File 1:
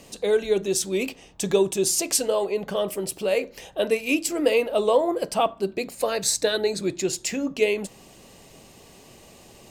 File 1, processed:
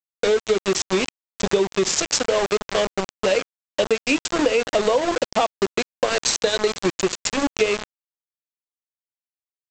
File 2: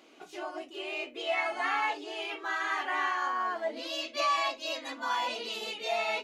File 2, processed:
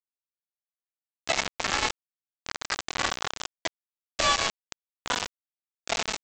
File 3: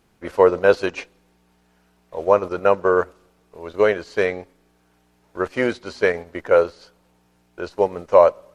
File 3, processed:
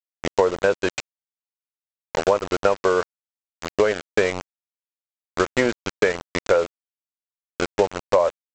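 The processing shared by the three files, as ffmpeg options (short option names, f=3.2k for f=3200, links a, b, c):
-af "aresample=16000,aeval=exprs='val(0)*gte(abs(val(0)),0.0631)':c=same,aresample=44100,acompressor=threshold=-23dB:ratio=6,volume=7.5dB"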